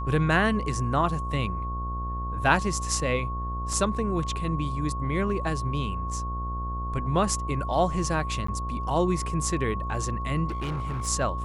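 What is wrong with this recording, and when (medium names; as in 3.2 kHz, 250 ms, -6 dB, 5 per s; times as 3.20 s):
buzz 60 Hz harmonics 22 -32 dBFS
whine 1.1 kHz -33 dBFS
3.73 s: dropout 2.6 ms
8.47–8.48 s: dropout 14 ms
10.48–11.08 s: clipped -26.5 dBFS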